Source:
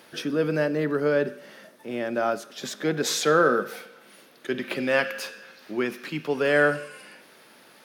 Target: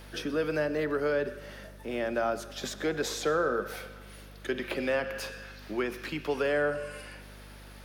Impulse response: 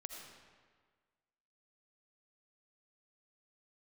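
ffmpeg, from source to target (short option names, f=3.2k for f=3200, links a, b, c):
-filter_complex "[0:a]acrossover=split=370|1100[a][b][c];[a]acompressor=threshold=-39dB:ratio=4[d];[b]acompressor=threshold=-28dB:ratio=4[e];[c]acompressor=threshold=-36dB:ratio=4[f];[d][e][f]amix=inputs=3:normalize=0,aeval=exprs='val(0)+0.00398*(sin(2*PI*50*n/s)+sin(2*PI*2*50*n/s)/2+sin(2*PI*3*50*n/s)/3+sin(2*PI*4*50*n/s)/4+sin(2*PI*5*50*n/s)/5)':c=same,asplit=2[g][h];[1:a]atrim=start_sample=2205,adelay=125[i];[h][i]afir=irnorm=-1:irlink=0,volume=-15.5dB[j];[g][j]amix=inputs=2:normalize=0"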